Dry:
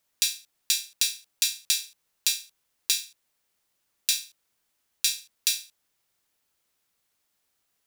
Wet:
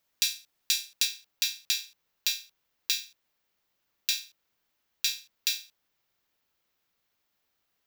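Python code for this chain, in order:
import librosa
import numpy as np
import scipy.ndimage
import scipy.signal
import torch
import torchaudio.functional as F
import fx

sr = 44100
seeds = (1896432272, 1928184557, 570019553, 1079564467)

y = fx.peak_eq(x, sr, hz=9300.0, db=fx.steps((0.0, -7.5), (1.05, -14.0)), octaves=0.79)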